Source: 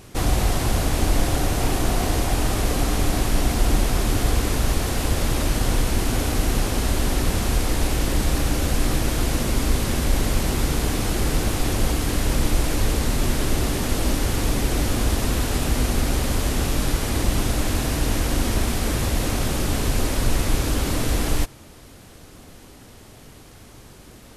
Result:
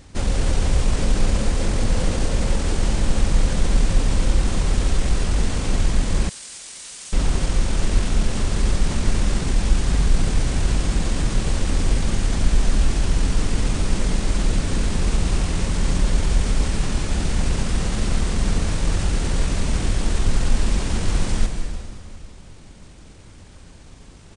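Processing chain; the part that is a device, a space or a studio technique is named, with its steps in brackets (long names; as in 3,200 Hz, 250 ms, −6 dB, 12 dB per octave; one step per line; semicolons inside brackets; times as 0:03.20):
monster voice (pitch shifter −5.5 semitones; low-shelf EQ 120 Hz +6 dB; convolution reverb RT60 2.2 s, pre-delay 109 ms, DRR 5 dB)
0:06.29–0:07.13: first difference
level −3 dB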